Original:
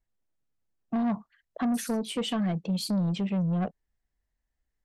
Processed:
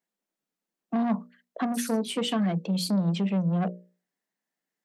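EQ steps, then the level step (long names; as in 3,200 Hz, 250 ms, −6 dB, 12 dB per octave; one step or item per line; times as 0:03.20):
elliptic high-pass filter 170 Hz
mains-hum notches 60/120/180/240/300/360/420/480/540/600 Hz
+3.5 dB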